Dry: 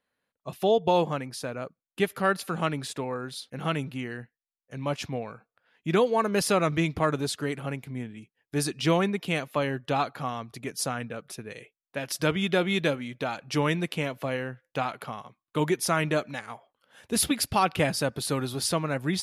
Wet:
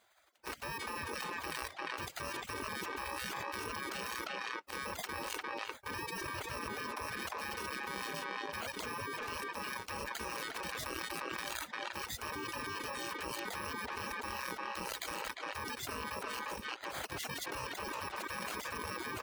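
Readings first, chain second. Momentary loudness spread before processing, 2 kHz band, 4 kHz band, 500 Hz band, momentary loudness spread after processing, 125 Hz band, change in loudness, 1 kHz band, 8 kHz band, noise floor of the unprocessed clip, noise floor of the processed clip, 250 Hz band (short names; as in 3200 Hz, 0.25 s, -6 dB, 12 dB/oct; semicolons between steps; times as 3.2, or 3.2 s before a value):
14 LU, -5.5 dB, -8.0 dB, -17.5 dB, 1 LU, -20.0 dB, -11.5 dB, -9.0 dB, -10.5 dB, under -85 dBFS, -53 dBFS, -18.5 dB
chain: FFT order left unsorted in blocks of 64 samples; de-esser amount 55%; spectral gate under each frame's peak -20 dB weak; HPF 60 Hz; reverb removal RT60 0.58 s; LPF 1300 Hz 6 dB/oct; sample leveller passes 1; speakerphone echo 0.35 s, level -12 dB; fast leveller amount 100%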